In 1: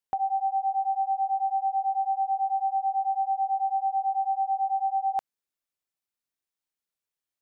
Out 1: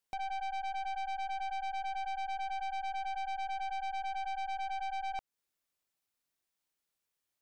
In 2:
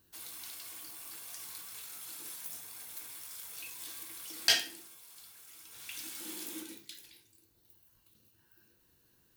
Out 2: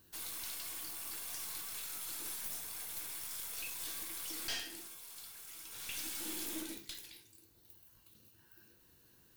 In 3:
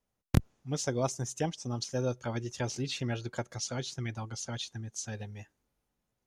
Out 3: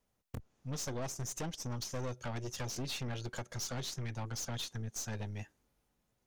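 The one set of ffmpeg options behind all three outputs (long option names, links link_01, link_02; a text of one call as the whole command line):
ffmpeg -i in.wav -af "acompressor=threshold=-36dB:ratio=2.5,aeval=exprs='(tanh(112*val(0)+0.5)-tanh(0.5))/112':channel_layout=same,volume=5.5dB" out.wav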